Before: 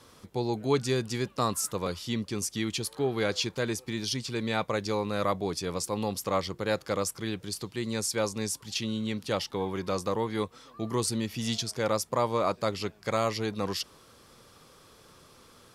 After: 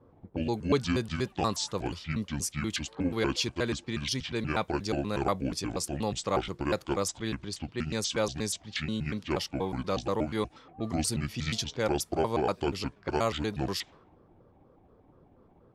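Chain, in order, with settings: pitch shift switched off and on -7 st, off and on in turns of 120 ms; level-controlled noise filter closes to 540 Hz, open at -28 dBFS

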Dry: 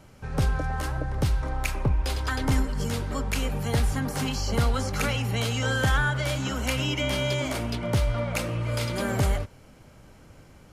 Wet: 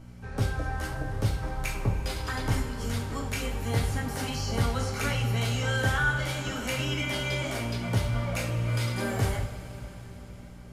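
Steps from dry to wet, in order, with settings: hum 60 Hz, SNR 16 dB; two-slope reverb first 0.4 s, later 4.9 s, from -18 dB, DRR -1.5 dB; trim -6 dB

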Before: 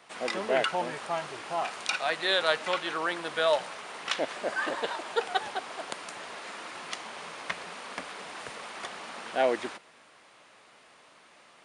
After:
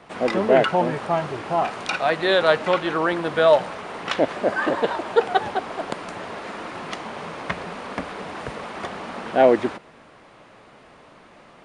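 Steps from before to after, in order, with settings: tilt EQ -3.5 dB/octave; trim +8 dB

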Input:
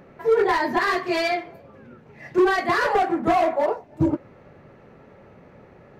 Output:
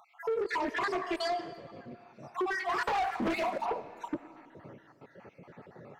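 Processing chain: random holes in the spectrogram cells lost 53%; 0.67–2.34 s: Bessel low-pass 8.1 kHz, order 2; 1.98–2.33 s: spectral replace 1.4–4 kHz before; high-pass 100 Hz 24 dB/octave; 2.86–3.61 s: waveshaping leveller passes 2; compression 6:1, threshold -25 dBFS, peak gain reduction 10.5 dB; saturation -26 dBFS, distortion -14 dB; algorithmic reverb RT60 2.4 s, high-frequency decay 0.8×, pre-delay 35 ms, DRR 14 dB; loudspeaker Doppler distortion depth 0.36 ms

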